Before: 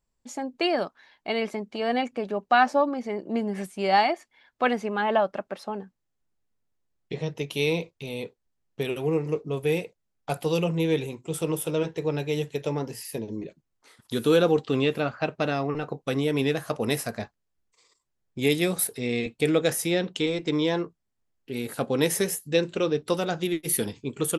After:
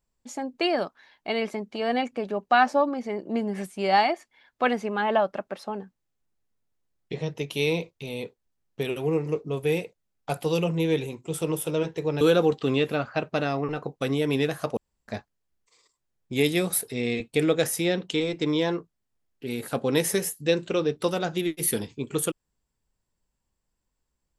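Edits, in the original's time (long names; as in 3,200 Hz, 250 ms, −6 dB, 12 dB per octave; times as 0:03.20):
0:12.21–0:14.27: remove
0:16.83–0:17.14: fill with room tone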